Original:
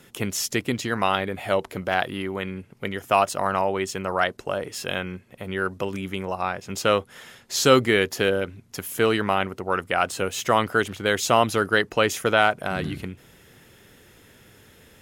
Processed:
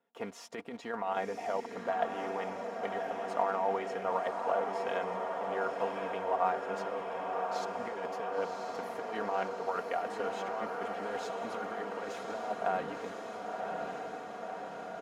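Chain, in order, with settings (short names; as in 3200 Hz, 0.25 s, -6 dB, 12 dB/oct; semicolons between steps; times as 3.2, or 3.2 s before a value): block floating point 5-bit; gate -42 dBFS, range -17 dB; comb 4.3 ms, depth 61%; negative-ratio compressor -23 dBFS, ratio -0.5; band-pass 760 Hz, Q 1.8; diffused feedback echo 1.056 s, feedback 72%, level -3.5 dB; gain -5 dB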